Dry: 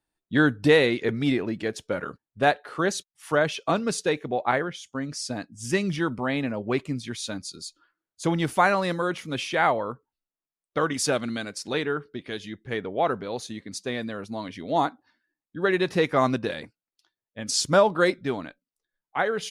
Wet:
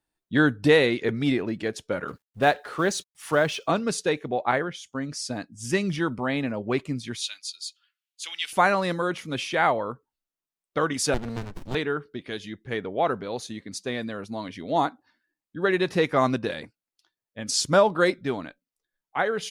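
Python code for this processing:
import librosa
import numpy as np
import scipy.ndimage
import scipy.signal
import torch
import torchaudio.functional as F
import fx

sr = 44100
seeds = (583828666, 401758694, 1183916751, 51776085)

y = fx.law_mismatch(x, sr, coded='mu', at=(2.07, 3.66), fade=0.02)
y = fx.highpass_res(y, sr, hz=2800.0, q=2.9, at=(7.21, 8.53))
y = fx.running_max(y, sr, window=65, at=(11.14, 11.75))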